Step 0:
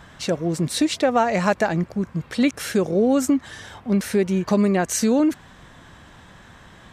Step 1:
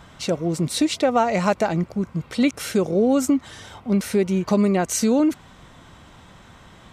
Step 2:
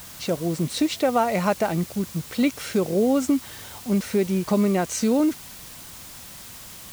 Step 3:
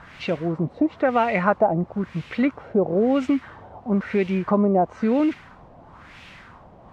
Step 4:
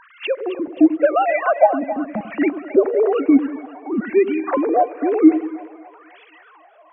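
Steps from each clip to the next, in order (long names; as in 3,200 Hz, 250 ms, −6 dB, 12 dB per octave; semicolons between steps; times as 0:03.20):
notch filter 1,700 Hz, Q 6.8
background noise blue −34 dBFS; high-shelf EQ 9,800 Hz −9.5 dB; level −2 dB
auto-filter low-pass sine 1 Hz 690–2,600 Hz
three sine waves on the formant tracks; echo with a time of its own for lows and highs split 530 Hz, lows 94 ms, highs 266 ms, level −12 dB; level +4 dB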